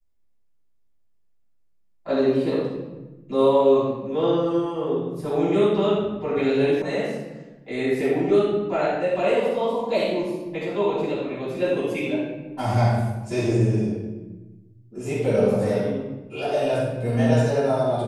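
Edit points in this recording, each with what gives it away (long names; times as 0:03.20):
0:06.82: cut off before it has died away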